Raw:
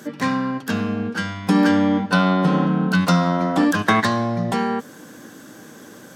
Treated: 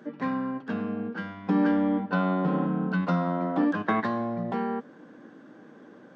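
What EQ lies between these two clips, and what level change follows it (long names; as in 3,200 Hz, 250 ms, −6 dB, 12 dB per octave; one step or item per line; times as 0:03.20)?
high-pass filter 190 Hz 12 dB per octave
head-to-tape spacing loss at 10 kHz 40 dB
−4.5 dB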